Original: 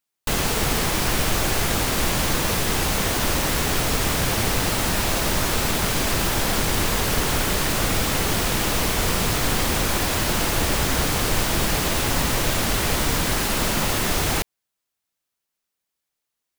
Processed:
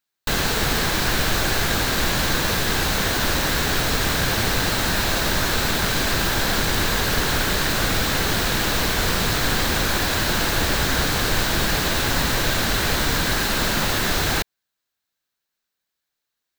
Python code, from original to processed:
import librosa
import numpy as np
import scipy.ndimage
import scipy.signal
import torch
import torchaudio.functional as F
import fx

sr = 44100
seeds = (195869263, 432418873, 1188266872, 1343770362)

y = fx.graphic_eq_31(x, sr, hz=(1600, 4000, 10000), db=(7, 6, -6))